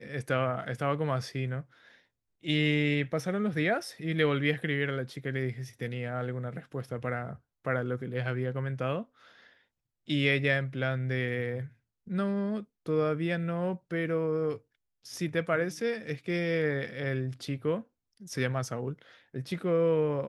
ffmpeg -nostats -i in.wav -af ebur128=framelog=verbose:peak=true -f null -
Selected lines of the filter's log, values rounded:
Integrated loudness:
  I:         -31.2 LUFS
  Threshold: -41.7 LUFS
Loudness range:
  LRA:         5.0 LU
  Threshold: -51.8 LUFS
  LRA low:   -34.8 LUFS
  LRA high:  -29.8 LUFS
True peak:
  Peak:      -12.1 dBFS